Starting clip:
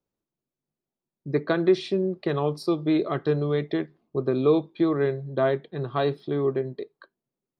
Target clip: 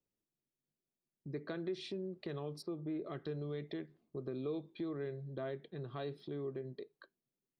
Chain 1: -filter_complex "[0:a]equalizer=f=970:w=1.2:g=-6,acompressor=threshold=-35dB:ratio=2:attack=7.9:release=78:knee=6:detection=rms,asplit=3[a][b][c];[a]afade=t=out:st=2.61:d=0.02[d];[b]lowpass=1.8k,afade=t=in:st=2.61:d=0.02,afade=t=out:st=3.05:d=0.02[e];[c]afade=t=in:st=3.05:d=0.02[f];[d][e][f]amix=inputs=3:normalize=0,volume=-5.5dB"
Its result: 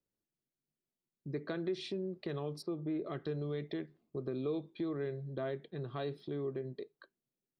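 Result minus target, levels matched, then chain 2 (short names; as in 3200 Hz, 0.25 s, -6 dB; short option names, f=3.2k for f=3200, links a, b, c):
compressor: peak gain reduction -3 dB
-filter_complex "[0:a]equalizer=f=970:w=1.2:g=-6,acompressor=threshold=-41.5dB:ratio=2:attack=7.9:release=78:knee=6:detection=rms,asplit=3[a][b][c];[a]afade=t=out:st=2.61:d=0.02[d];[b]lowpass=1.8k,afade=t=in:st=2.61:d=0.02,afade=t=out:st=3.05:d=0.02[e];[c]afade=t=in:st=3.05:d=0.02[f];[d][e][f]amix=inputs=3:normalize=0,volume=-5.5dB"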